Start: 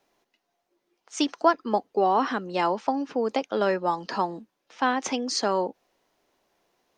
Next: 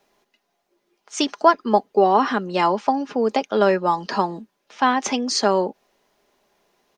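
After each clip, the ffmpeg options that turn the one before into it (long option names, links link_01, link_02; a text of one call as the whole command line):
ffmpeg -i in.wav -af "aecho=1:1:4.9:0.36,volume=5dB" out.wav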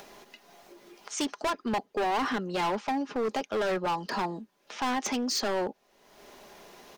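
ffmpeg -i in.wav -af "volume=20.5dB,asoftclip=hard,volume=-20.5dB,acompressor=mode=upward:threshold=-29dB:ratio=2.5,volume=-5dB" out.wav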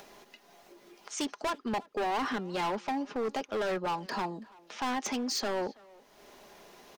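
ffmpeg -i in.wav -filter_complex "[0:a]asplit=2[link_01][link_02];[link_02]adelay=330,highpass=300,lowpass=3400,asoftclip=type=hard:threshold=-31dB,volume=-19dB[link_03];[link_01][link_03]amix=inputs=2:normalize=0,volume=-3dB" out.wav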